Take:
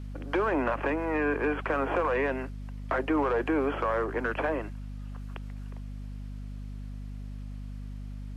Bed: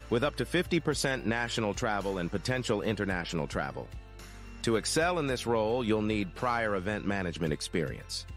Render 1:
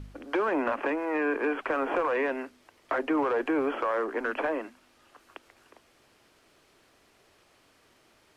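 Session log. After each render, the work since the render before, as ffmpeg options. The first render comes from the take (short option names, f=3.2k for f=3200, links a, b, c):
-af "bandreject=f=50:t=h:w=4,bandreject=f=100:t=h:w=4,bandreject=f=150:t=h:w=4,bandreject=f=200:t=h:w=4,bandreject=f=250:t=h:w=4"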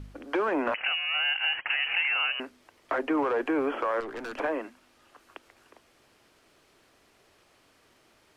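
-filter_complex "[0:a]asettb=1/sr,asplit=3[a][b][c];[a]atrim=end=0.744[d];[b]atrim=start=0.74:end=2.4,asetpts=PTS-STARTPTS,afade=t=in:d=0.004:c=qsin,afade=t=out:st=1.656:d=0.004:c=qsin,lowpass=f=2.7k:t=q:w=0.5098,lowpass=f=2.7k:t=q:w=0.6013,lowpass=f=2.7k:t=q:w=0.9,lowpass=f=2.7k:t=q:w=2.563,afreqshift=-3200[e];[c]atrim=start=2.396[f];[d][e]acrossfade=d=0.004:c1=hsin:c2=qsin[g];[g][f]acrossfade=d=0.004:c1=qsin:c2=hsin,asettb=1/sr,asplit=3[h][i][j];[h]atrim=end=4.004[k];[i]atrim=start=4:end=4.4,asetpts=PTS-STARTPTS,afade=t=in:d=0.004:c=qsin,afade=t=out:st=0.396:d=0.004:c=qsin,aeval=exprs='(tanh(50.1*val(0)+0.25)-tanh(0.25))/50.1':c=same[l];[j]atrim=start=4.396[m];[k][l]acrossfade=d=0.004:c1=hsin:c2=qsin[n];[n][m]acrossfade=d=0.004:c1=qsin:c2=hsin"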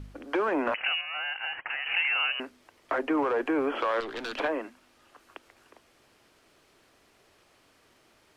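-filter_complex "[0:a]asettb=1/sr,asplit=3[a][b][c];[a]atrim=end=1.014[d];[b]atrim=start=1.01:end=1.86,asetpts=PTS-STARTPTS,afade=t=in:d=0.004:c=qsin,afade=t=out:st=0.846:d=0.004:c=qsin,lowpass=1.8k[e];[c]atrim=start=1.856[f];[d][e]acrossfade=d=0.004:c1=hsin:c2=qsin[g];[g][f]acrossfade=d=0.004:c1=qsin:c2=hsin,asettb=1/sr,asplit=3[h][i][j];[h]atrim=end=3.754[k];[i]atrim=start=3.75:end=4.48,asetpts=PTS-STARTPTS,afade=t=in:d=0.004:c=qsin,afade=t=out:st=0.726:d=0.004:c=qsin,equalizer=f=3.7k:w=1.4:g=12.5[l];[j]atrim=start=4.476[m];[k][l]acrossfade=d=0.004:c1=hsin:c2=qsin[n];[n][m]acrossfade=d=0.004:c1=qsin:c2=hsin"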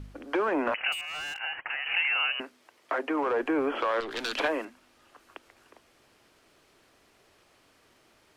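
-filter_complex "[0:a]asettb=1/sr,asplit=3[a][b][c];[a]atrim=end=0.924[d];[b]atrim=start=0.92:end=1.41,asetpts=PTS-STARTPTS,afade=t=in:d=0.004:c=qsin,afade=t=out:st=0.486:d=0.004:c=qsin,asoftclip=type=hard:threshold=-33.5dB[e];[c]atrim=start=1.406[f];[d][e]acrossfade=d=0.004:c1=hsin:c2=qsin[g];[g][f]acrossfade=d=0.004:c1=qsin:c2=hsin,asettb=1/sr,asplit=3[h][i][j];[h]atrim=end=2.414[k];[i]atrim=start=2.41:end=3.27,asetpts=PTS-STARTPTS,afade=t=in:d=0.004:c=qsin,afade=t=out:st=0.856:d=0.004:c=qsin,highpass=f=340:p=1[l];[j]atrim=start=3.266[m];[k][l]acrossfade=d=0.004:c1=hsin:c2=qsin[n];[n][m]acrossfade=d=0.004:c1=qsin:c2=hsin,asettb=1/sr,asplit=3[o][p][q];[o]atrim=end=4.114[r];[p]atrim=start=4.11:end=4.65,asetpts=PTS-STARTPTS,afade=t=in:d=0.004:c=qsin,afade=t=out:st=0.536:d=0.004:c=qsin,highshelf=f=2.6k:g=9.5[s];[q]atrim=start=4.646[t];[r][s]acrossfade=d=0.004:c1=hsin:c2=qsin[u];[u][t]acrossfade=d=0.004:c1=qsin:c2=hsin"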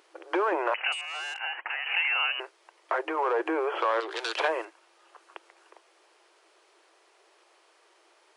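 -af "afftfilt=real='re*between(b*sr/4096,320,11000)':imag='im*between(b*sr/4096,320,11000)':win_size=4096:overlap=0.75,equalizer=f=920:t=o:w=0.65:g=4.5"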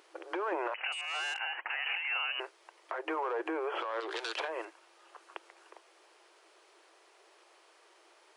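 -af "acompressor=threshold=-28dB:ratio=6,alimiter=level_in=0.5dB:limit=-24dB:level=0:latency=1:release=261,volume=-0.5dB"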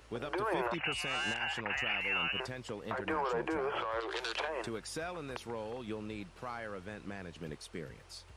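-filter_complex "[1:a]volume=-12.5dB[a];[0:a][a]amix=inputs=2:normalize=0"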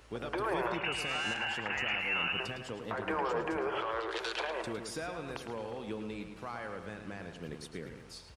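-filter_complex "[0:a]asplit=2[a][b];[b]adelay=108,lowpass=f=4.4k:p=1,volume=-7dB,asplit=2[c][d];[d]adelay=108,lowpass=f=4.4k:p=1,volume=0.52,asplit=2[e][f];[f]adelay=108,lowpass=f=4.4k:p=1,volume=0.52,asplit=2[g][h];[h]adelay=108,lowpass=f=4.4k:p=1,volume=0.52,asplit=2[i][j];[j]adelay=108,lowpass=f=4.4k:p=1,volume=0.52,asplit=2[k][l];[l]adelay=108,lowpass=f=4.4k:p=1,volume=0.52[m];[a][c][e][g][i][k][m]amix=inputs=7:normalize=0"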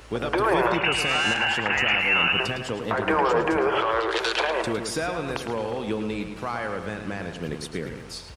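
-af "volume=11.5dB"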